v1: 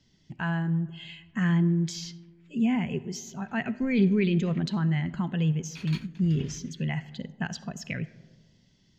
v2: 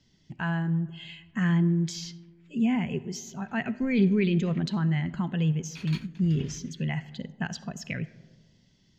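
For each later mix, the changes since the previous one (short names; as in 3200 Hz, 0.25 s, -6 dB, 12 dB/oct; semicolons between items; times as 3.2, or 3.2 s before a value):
none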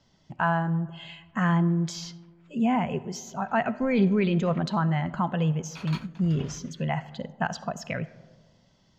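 master: add band shelf 850 Hz +11.5 dB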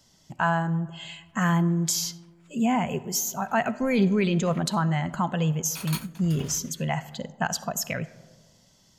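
master: remove air absorption 190 m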